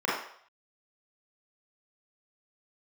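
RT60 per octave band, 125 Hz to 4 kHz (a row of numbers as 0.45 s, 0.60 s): 0.25 s, 0.40 s, 0.60 s, 0.65 s, 0.60 s, 0.60 s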